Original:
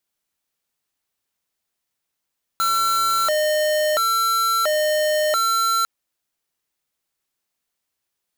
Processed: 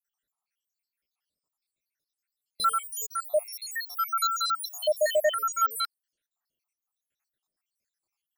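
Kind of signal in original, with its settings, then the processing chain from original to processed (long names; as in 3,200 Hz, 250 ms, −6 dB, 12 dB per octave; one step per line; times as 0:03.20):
siren hi-lo 611–1,350 Hz 0.73 per second square −19.5 dBFS 3.25 s
time-frequency cells dropped at random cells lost 84%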